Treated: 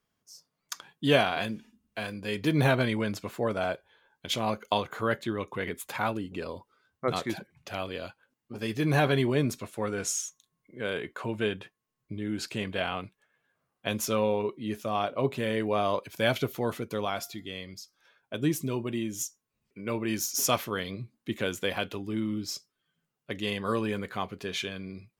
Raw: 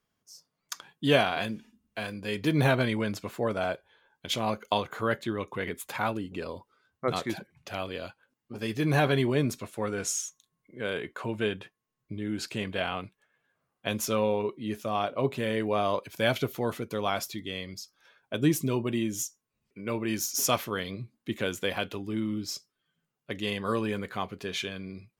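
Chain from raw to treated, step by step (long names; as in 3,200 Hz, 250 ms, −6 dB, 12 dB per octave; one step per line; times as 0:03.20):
0:17.05–0:19.21: tuned comb filter 350 Hz, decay 0.54 s, mix 30%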